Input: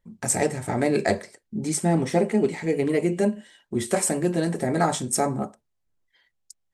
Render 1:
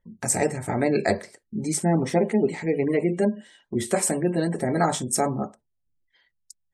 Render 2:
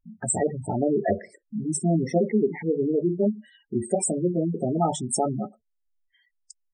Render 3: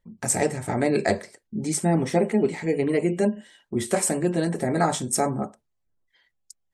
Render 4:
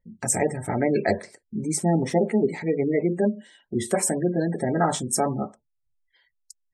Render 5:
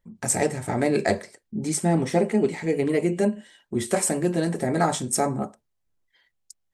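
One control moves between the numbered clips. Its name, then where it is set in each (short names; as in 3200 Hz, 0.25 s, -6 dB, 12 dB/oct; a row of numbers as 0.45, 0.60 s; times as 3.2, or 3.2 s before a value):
spectral gate, under each frame's peak: -35, -10, -45, -25, -60 dB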